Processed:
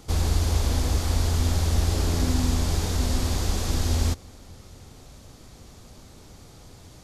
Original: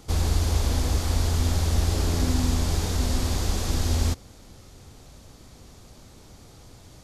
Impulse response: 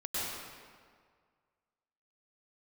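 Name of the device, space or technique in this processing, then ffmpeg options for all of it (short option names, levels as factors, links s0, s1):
ducked reverb: -filter_complex "[0:a]asplit=3[s0][s1][s2];[1:a]atrim=start_sample=2205[s3];[s1][s3]afir=irnorm=-1:irlink=0[s4];[s2]apad=whole_len=310091[s5];[s4][s5]sidechaincompress=threshold=0.0141:ratio=8:attack=16:release=522,volume=0.158[s6];[s0][s6]amix=inputs=2:normalize=0"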